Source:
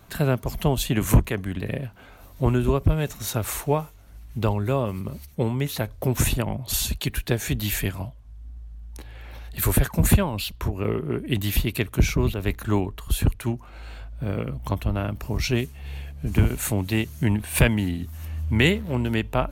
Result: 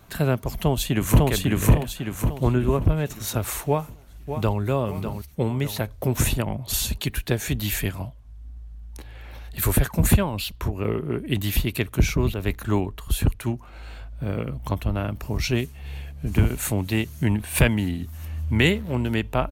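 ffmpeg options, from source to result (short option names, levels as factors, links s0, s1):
-filter_complex "[0:a]asplit=2[s0][s1];[s1]afade=t=in:st=0.58:d=0.01,afade=t=out:st=1.27:d=0.01,aecho=0:1:550|1100|1650|2200|2750|3300:1|0.45|0.2025|0.091125|0.0410062|0.0184528[s2];[s0][s2]amix=inputs=2:normalize=0,asettb=1/sr,asplit=3[s3][s4][s5];[s3]atrim=end=2.434[s6];[s4]atrim=start=2.43:end=3.06,asetpts=PTS-STARTPTS,afade=t=in:d=0.004:c=qsin,afade=t=out:st=0.626:d=0.004:c=qsin,acrossover=split=2900[s7][s8];[s8]acompressor=threshold=0.00398:ratio=4:attack=1:release=60[s9];[s7][s9]amix=inputs=2:normalize=0[s10];[s5]atrim=start=3.056[s11];[s6][s10]acrossfade=d=0.004:c1=hsin:c2=qsin[s12];[s12][s11]acrossfade=d=0.004:c1=qsin:c2=hsin,asplit=2[s13][s14];[s14]afade=t=in:st=3.67:d=0.01,afade=t=out:st=4.61:d=0.01,aecho=0:1:600|1200|1800|2400|3000:0.375837|0.169127|0.0761071|0.0342482|0.0154117[s15];[s13][s15]amix=inputs=2:normalize=0"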